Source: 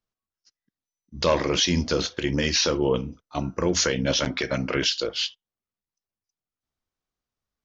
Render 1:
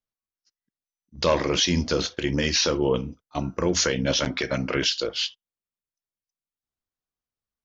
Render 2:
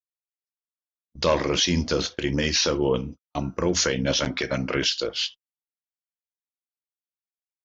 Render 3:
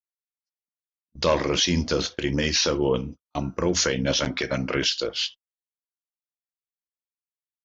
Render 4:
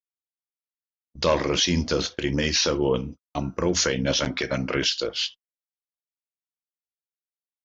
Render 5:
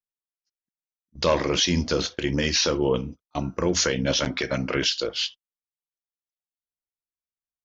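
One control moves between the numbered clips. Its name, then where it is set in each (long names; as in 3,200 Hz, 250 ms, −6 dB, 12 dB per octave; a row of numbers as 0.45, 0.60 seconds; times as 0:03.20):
noise gate, range: −7, −45, −33, −60, −20 decibels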